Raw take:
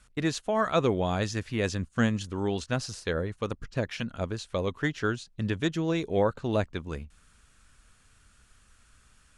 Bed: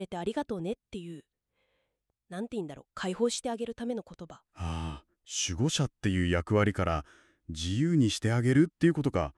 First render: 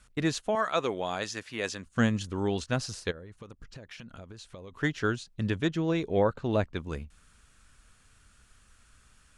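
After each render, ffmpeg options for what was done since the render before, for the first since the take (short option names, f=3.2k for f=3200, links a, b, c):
-filter_complex "[0:a]asettb=1/sr,asplit=3[a][b][c];[a]atrim=end=0.554[d];[b]atrim=start=0.55:end=1.86,asetpts=PTS-STARTPTS,afade=t=in:d=0.004:c=qsin,afade=t=out:st=1.306:d=0.004:c=qsin,highpass=f=630:p=1[e];[c]atrim=start=1.856[f];[d][e]acrossfade=d=0.004:c1=hsin:c2=qsin[g];[g][f]acrossfade=d=0.004:c1=qsin:c2=hsin,asplit=3[h][i][j];[h]afade=t=out:st=3.1:d=0.02[k];[i]acompressor=threshold=-41dB:ratio=12:attack=3.2:release=140:knee=1:detection=peak,afade=t=in:st=3.1:d=0.02,afade=t=out:st=4.72:d=0.02[l];[j]afade=t=in:st=4.72:d=0.02[m];[k][l][m]amix=inputs=3:normalize=0,asettb=1/sr,asplit=3[n][o][p];[n]atrim=end=5.614[q];[o]atrim=start=5.61:end=6.76,asetpts=PTS-STARTPTS,afade=t=in:d=0.004:c=qsin,afade=t=out:st=1.146:d=0.004:c=qsin,highshelf=f=6.7k:g=-10.5[r];[p]atrim=start=6.756[s];[q][r]acrossfade=d=0.004:c1=hsin:c2=qsin[t];[t][s]acrossfade=d=0.004:c1=qsin:c2=hsin"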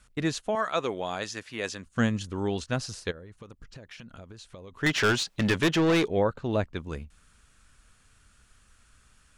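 -filter_complex "[0:a]asettb=1/sr,asplit=3[a][b][c];[a]atrim=end=4.864[d];[b]atrim=start=4.86:end=6.08,asetpts=PTS-STARTPTS,afade=t=in:d=0.004:c=qsin,afade=t=out:st=1.216:d=0.004:c=qsin,asplit=2[e][f];[f]highpass=f=720:p=1,volume=25dB,asoftclip=type=tanh:threshold=-15dB[g];[e][g]amix=inputs=2:normalize=0,lowpass=f=5.3k:p=1,volume=-6dB[h];[c]atrim=start=6.076[i];[d][h]acrossfade=d=0.004:c1=hsin:c2=qsin[j];[j][i]acrossfade=d=0.004:c1=qsin:c2=hsin"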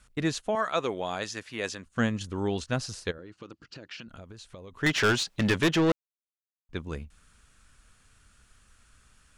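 -filter_complex "[0:a]asettb=1/sr,asplit=3[a][b][c];[a]atrim=end=1.754[d];[b]atrim=start=1.75:end=2.21,asetpts=PTS-STARTPTS,afade=t=in:d=0.004:c=qsin,afade=t=out:st=0.456:d=0.004:c=qsin,bass=f=250:g=-3,treble=f=4k:g=-3[e];[c]atrim=start=2.206[f];[d][e]acrossfade=d=0.004:c1=hsin:c2=qsin[g];[g][f]acrossfade=d=0.004:c1=qsin:c2=hsin,asettb=1/sr,asplit=3[h][i][j];[h]atrim=end=3.184[k];[i]atrim=start=3.18:end=4.08,asetpts=PTS-STARTPTS,afade=t=in:d=0.004:c=qsin,afade=t=out:st=0.896:d=0.004:c=qsin,highpass=130,equalizer=f=320:t=q:w=4:g=9,equalizer=f=1.4k:t=q:w=4:g=6,equalizer=f=2.8k:t=q:w=4:g=7,equalizer=f=4.6k:t=q:w=4:g=9,lowpass=f=7.8k:w=0.5412,lowpass=f=7.8k:w=1.3066[l];[j]atrim=start=4.076[m];[k][l]acrossfade=d=0.004:c1=hsin:c2=qsin[n];[n][m]acrossfade=d=0.004:c1=qsin:c2=hsin,asplit=3[o][p][q];[o]atrim=end=5.92,asetpts=PTS-STARTPTS,afade=t=out:st=5.916:d=0.004:c=hsin[r];[p]atrim=start=5.92:end=6.69,asetpts=PTS-STARTPTS,volume=0[s];[q]atrim=start=6.69,asetpts=PTS-STARTPTS,afade=t=in:d=0.004:c=hsin[t];[r][s][t]concat=n=3:v=0:a=1"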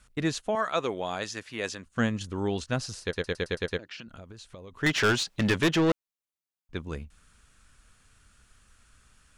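-filter_complex "[0:a]asplit=8[a][b][c][d][e][f][g][h];[a]atrim=end=3.132[i];[b]atrim=start=3.018:end=3.132[j];[c]atrim=start=3.018:end=3.132[k];[d]atrim=start=3.018:end=3.132[l];[e]atrim=start=3.018:end=3.132[m];[f]atrim=start=3.018:end=3.132[n];[g]atrim=start=3.018:end=3.132[o];[h]atrim=start=3.788[p];[i][j]acrossfade=d=0.004:c1=hsin:c2=hsin[q];[q][k]acrossfade=d=0.004:c1=hsin:c2=hsin[r];[r][l]acrossfade=d=0.004:c1=hsin:c2=hsin[s];[s][m]acrossfade=d=0.004:c1=hsin:c2=hsin[t];[t][n]acrossfade=d=0.004:c1=hsin:c2=hsin[u];[u][o]acrossfade=d=0.004:c1=hsin:c2=hsin[v];[v][p]acrossfade=d=0.004:c1=hsin:c2=hsin"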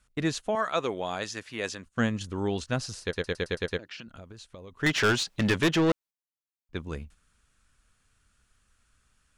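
-af "agate=range=-8dB:threshold=-48dB:ratio=16:detection=peak"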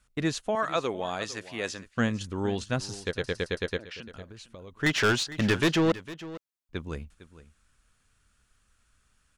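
-af "aecho=1:1:455:0.15"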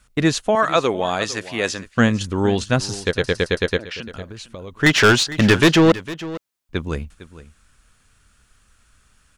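-af "volume=10.5dB"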